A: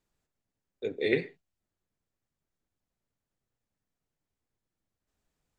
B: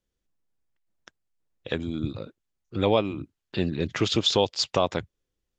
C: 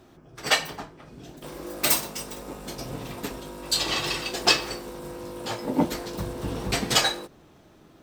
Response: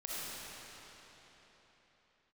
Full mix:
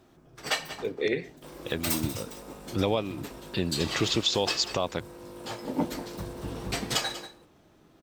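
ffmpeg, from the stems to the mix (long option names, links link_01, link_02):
-filter_complex "[0:a]volume=2dB[link_01];[1:a]highshelf=frequency=6900:gain=9.5,volume=0.5dB,asplit=2[link_02][link_03];[2:a]volume=-5.5dB,asplit=2[link_04][link_05];[link_05]volume=-14dB[link_06];[link_03]apad=whole_len=250552[link_07];[link_01][link_07]sidechaincompress=threshold=-41dB:ratio=8:attack=16:release=1320[link_08];[link_06]aecho=0:1:189:1[link_09];[link_08][link_02][link_04][link_09]amix=inputs=4:normalize=0,alimiter=limit=-14dB:level=0:latency=1:release=497"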